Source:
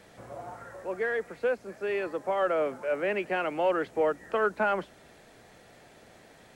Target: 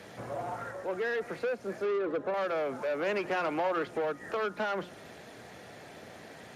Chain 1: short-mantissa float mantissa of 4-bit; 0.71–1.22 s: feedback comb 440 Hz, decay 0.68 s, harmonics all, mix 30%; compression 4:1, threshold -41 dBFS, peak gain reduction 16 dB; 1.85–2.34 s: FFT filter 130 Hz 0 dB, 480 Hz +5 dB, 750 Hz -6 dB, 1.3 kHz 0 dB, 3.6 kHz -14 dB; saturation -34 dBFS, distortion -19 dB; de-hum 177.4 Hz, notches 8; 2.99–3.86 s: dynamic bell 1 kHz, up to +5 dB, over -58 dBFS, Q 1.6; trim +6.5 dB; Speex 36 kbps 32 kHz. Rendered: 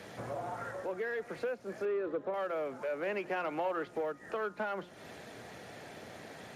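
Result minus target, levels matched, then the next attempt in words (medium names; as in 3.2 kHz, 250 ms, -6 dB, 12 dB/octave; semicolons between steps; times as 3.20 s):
compression: peak gain reduction +7 dB
short-mantissa float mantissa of 4-bit; 0.71–1.22 s: feedback comb 440 Hz, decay 0.68 s, harmonics all, mix 30%; compression 4:1, threshold -31.5 dBFS, peak gain reduction 9 dB; 1.85–2.34 s: FFT filter 130 Hz 0 dB, 480 Hz +5 dB, 750 Hz -6 dB, 1.3 kHz 0 dB, 3.6 kHz -14 dB; saturation -34 dBFS, distortion -11 dB; de-hum 177.4 Hz, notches 8; 2.99–3.86 s: dynamic bell 1 kHz, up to +5 dB, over -58 dBFS, Q 1.6; trim +6.5 dB; Speex 36 kbps 32 kHz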